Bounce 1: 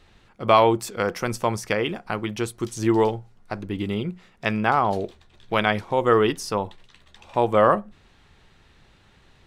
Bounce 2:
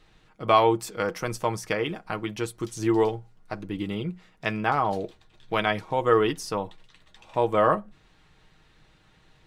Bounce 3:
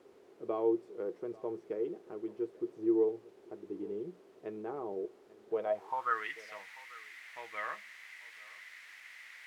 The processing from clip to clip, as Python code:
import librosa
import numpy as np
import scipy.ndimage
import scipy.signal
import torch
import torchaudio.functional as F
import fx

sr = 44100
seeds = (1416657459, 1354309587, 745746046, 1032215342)

y1 = x + 0.44 * np.pad(x, (int(6.4 * sr / 1000.0), 0))[:len(x)]
y1 = y1 * librosa.db_to_amplitude(-4.0)
y2 = fx.quant_dither(y1, sr, seeds[0], bits=6, dither='triangular')
y2 = fx.filter_sweep_bandpass(y2, sr, from_hz=390.0, to_hz=2000.0, start_s=5.5, end_s=6.26, q=7.2)
y2 = y2 + 10.0 ** (-21.0 / 20.0) * np.pad(y2, (int(841 * sr / 1000.0), 0))[:len(y2)]
y2 = y2 * librosa.db_to_amplitude(1.0)